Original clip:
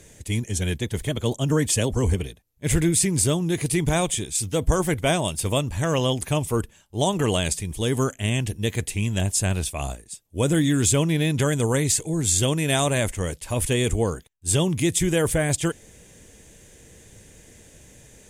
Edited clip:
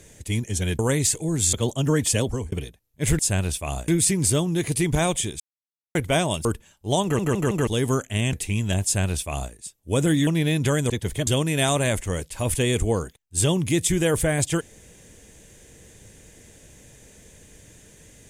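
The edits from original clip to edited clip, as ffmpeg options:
-filter_complex "[0:a]asplit=17[a][b][c][d][e][f][g][h][i][j][k][l][m][n][o][p][q];[a]atrim=end=0.792[r];[b]atrim=start=11.638:end=12.382[s];[c]atrim=start=1.158:end=2.15,asetpts=PTS-STARTPTS,afade=t=out:st=0.722:d=0.27[t];[d]atrim=start=2.15:end=2.822,asetpts=PTS-STARTPTS,afade=t=in:d=0.004:c=hsin[u];[e]atrim=start=9.308:end=10.002[v];[f]atrim=start=2.818:end=4.34,asetpts=PTS-STARTPTS,afade=t=out:st=1.518:d=0.004:c=hsin[w];[g]atrim=start=4.34:end=4.89,asetpts=PTS-STARTPTS,volume=0[x];[h]atrim=start=4.89:end=5.392,asetpts=PTS-STARTPTS,afade=t=in:d=0.004:c=hsin[y];[i]atrim=start=6.538:end=7.282[z];[j]atrim=start=7.118:end=7.282[aa];[k]atrim=start=7.118:end=7.282[ab];[l]atrim=start=7.118:end=7.282[ac];[m]atrim=start=7.758:end=8.422[ad];[n]atrim=start=8.798:end=10.742[ae];[o]atrim=start=11.008:end=11.642[af];[p]atrim=start=0.788:end=1.162[ag];[q]atrim=start=12.378[ah];[r][s]acrossfade=d=0.004:c1=hsin:c2=hsin[ai];[t][u]concat=n=2:v=0:a=1[aj];[ai][aj]acrossfade=d=0.004:c1=hsin:c2=hsin[ak];[ak][v]acrossfade=d=0.004:c1=hsin:c2=hsin[al];[w][x][y]concat=n=3:v=0:a=1[am];[al][am]acrossfade=d=0.004:c1=hsin:c2=hsin[an];[an][z]acrossfade=d=0.004:c1=hsin:c2=hsin[ao];[ao][aa]acrossfade=d=0.004:c1=hsin:c2=hsin[ap];[ap][ab]acrossfade=d=0.004:c1=hsin:c2=hsin[aq];[aq][ac]acrossfade=d=0.004:c1=hsin:c2=hsin[ar];[ar][ad]acrossfade=d=0.004:c1=hsin:c2=hsin[as];[as][ae]acrossfade=d=0.004:c1=hsin:c2=hsin[at];[at][af]acrossfade=d=0.004:c1=hsin:c2=hsin[au];[au][ag]acrossfade=d=0.004:c1=hsin:c2=hsin[av];[av][ah]acrossfade=d=0.004:c1=hsin:c2=hsin"

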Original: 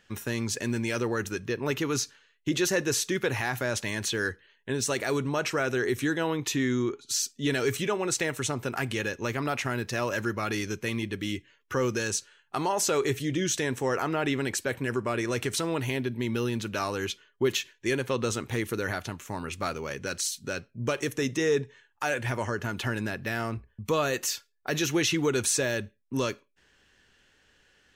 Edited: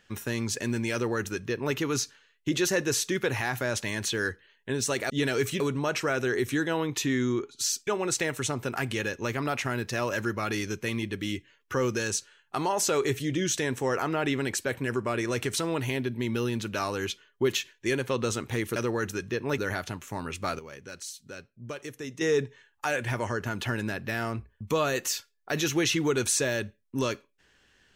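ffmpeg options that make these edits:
-filter_complex "[0:a]asplit=8[a][b][c][d][e][f][g][h];[a]atrim=end=5.102[i];[b]atrim=start=7.368:end=7.872[j];[c]atrim=start=5.098:end=7.372[k];[d]atrim=start=7.868:end=18.762[l];[e]atrim=start=0.928:end=1.752[m];[f]atrim=start=18.758:end=19.772[n];[g]atrim=start=19.768:end=21.392,asetpts=PTS-STARTPTS,volume=-9.5dB[o];[h]atrim=start=21.388[p];[i][j]acrossfade=d=0.004:c1=hsin:c2=hsin[q];[q][k]acrossfade=d=0.004:c1=hsin:c2=hsin[r];[r][l]acrossfade=d=0.004:c1=hsin:c2=hsin[s];[s][m]acrossfade=d=0.004:c1=hsin:c2=hsin[t];[t][n]acrossfade=d=0.004:c1=hsin:c2=hsin[u];[u][o]acrossfade=d=0.004:c1=hsin:c2=hsin[v];[v][p]acrossfade=d=0.004:c1=hsin:c2=hsin"

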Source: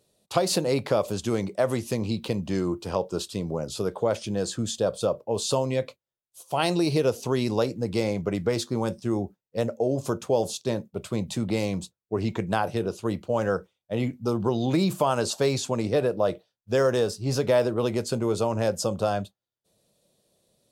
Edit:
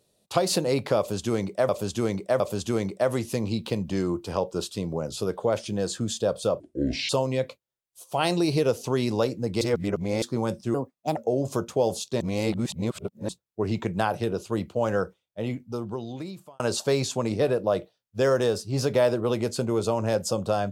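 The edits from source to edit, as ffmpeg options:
-filter_complex "[0:a]asplit=12[a][b][c][d][e][f][g][h][i][j][k][l];[a]atrim=end=1.692[m];[b]atrim=start=0.978:end=1.692[n];[c]atrim=start=0.978:end=5.184[o];[d]atrim=start=5.18:end=5.48,asetpts=PTS-STARTPTS,asetrate=26901,aresample=44100[p];[e]atrim=start=5.476:end=8.002[q];[f]atrim=start=7.998:end=8.612,asetpts=PTS-STARTPTS,areverse[r];[g]atrim=start=8.608:end=9.134[s];[h]atrim=start=9.13:end=9.7,asetpts=PTS-STARTPTS,asetrate=59094,aresample=44100[t];[i]atrim=start=9.696:end=10.742[u];[j]atrim=start=10.738:end=11.822,asetpts=PTS-STARTPTS,areverse[v];[k]atrim=start=11.818:end=15.13,asetpts=PTS-STARTPTS,afade=t=out:st=1.682:d=1.63[w];[l]atrim=start=15.13,asetpts=PTS-STARTPTS,afade=t=in:d=0.004:c=hsin[x];[m][n]acrossfade=d=0.004:c1=hsin:c2=hsin[y];[y][o]acrossfade=d=0.004:c1=hsin:c2=hsin[z];[z][p]acrossfade=d=0.004:c1=hsin:c2=hsin[aa];[aa][q]acrossfade=d=0.004:c1=hsin:c2=hsin[ab];[ab][r]acrossfade=d=0.004:c1=hsin:c2=hsin[ac];[ac][s]acrossfade=d=0.004:c1=hsin:c2=hsin[ad];[ad][t]acrossfade=d=0.004:c1=hsin:c2=hsin[ae];[ae][u]acrossfade=d=0.004:c1=hsin:c2=hsin[af];[af][v]acrossfade=d=0.004:c1=hsin:c2=hsin[ag];[w][x]concat=n=2:v=0:a=1[ah];[ag][ah]acrossfade=d=0.004:c1=hsin:c2=hsin"

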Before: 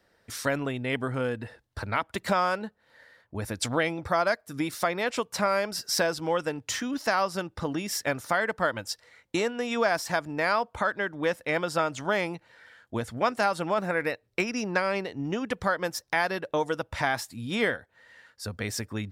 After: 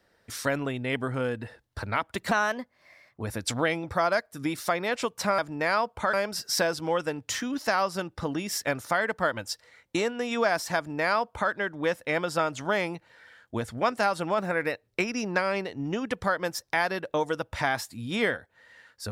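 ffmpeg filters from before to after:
-filter_complex "[0:a]asplit=5[a][b][c][d][e];[a]atrim=end=2.314[f];[b]atrim=start=2.31:end=3.37,asetpts=PTS-STARTPTS,asetrate=51156,aresample=44100,atrim=end_sample=40298,asetpts=PTS-STARTPTS[g];[c]atrim=start=3.366:end=5.532[h];[d]atrim=start=10.158:end=10.912[i];[e]atrim=start=5.528[j];[f][g]acrossfade=d=0.004:c1=hsin:c2=hsin[k];[k][h]acrossfade=d=0.004:c1=hsin:c2=hsin[l];[l][i]acrossfade=d=0.004:c1=hsin:c2=hsin[m];[m][j]acrossfade=d=0.004:c1=hsin:c2=hsin"

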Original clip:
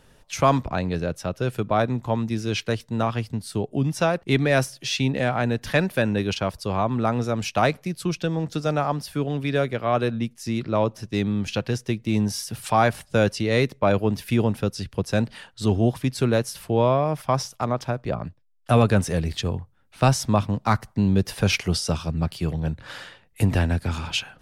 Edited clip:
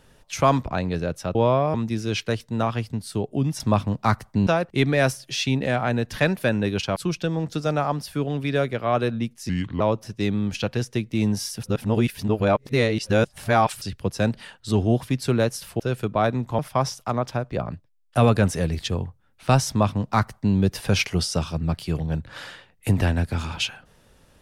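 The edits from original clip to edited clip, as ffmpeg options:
-filter_complex "[0:a]asplit=12[a][b][c][d][e][f][g][h][i][j][k][l];[a]atrim=end=1.352[m];[b]atrim=start=16.728:end=17.122[n];[c]atrim=start=2.138:end=4.002[o];[d]atrim=start=20.218:end=21.092[p];[e]atrim=start=3.998:end=6.492[q];[f]atrim=start=7.958:end=10.494[r];[g]atrim=start=10.49:end=10.74,asetpts=PTS-STARTPTS,asetrate=34839,aresample=44100[s];[h]atrim=start=10.736:end=12.572[t];[i]atrim=start=12.568:end=14.752,asetpts=PTS-STARTPTS,areverse[u];[j]atrim=start=14.748:end=16.732[v];[k]atrim=start=1.348:end=2.142[w];[l]atrim=start=17.118[x];[m][n]acrossfade=d=0.004:c1=hsin:c2=hsin[y];[y][o]acrossfade=d=0.004:c1=hsin:c2=hsin[z];[z][p]acrossfade=d=0.004:c1=hsin:c2=hsin[aa];[aa][q]acrossfade=d=0.004:c1=hsin:c2=hsin[ab];[ab][r]acrossfade=d=0.004:c1=hsin:c2=hsin[ac];[ac][s]acrossfade=d=0.004:c1=hsin:c2=hsin[ad];[ad][t]acrossfade=d=0.004:c1=hsin:c2=hsin[ae];[ae][u]acrossfade=d=0.004:c1=hsin:c2=hsin[af];[af][v]acrossfade=d=0.004:c1=hsin:c2=hsin[ag];[ag][w]acrossfade=d=0.004:c1=hsin:c2=hsin[ah];[ah][x]acrossfade=d=0.004:c1=hsin:c2=hsin"

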